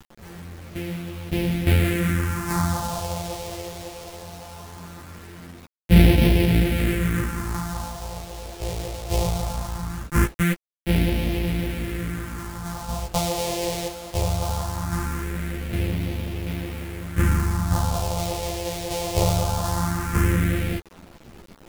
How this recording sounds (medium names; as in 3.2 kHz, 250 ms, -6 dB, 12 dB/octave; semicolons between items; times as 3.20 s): a buzz of ramps at a fixed pitch in blocks of 256 samples; phasing stages 4, 0.2 Hz, lowest notch 230–1200 Hz; a quantiser's noise floor 8-bit, dither none; a shimmering, thickened sound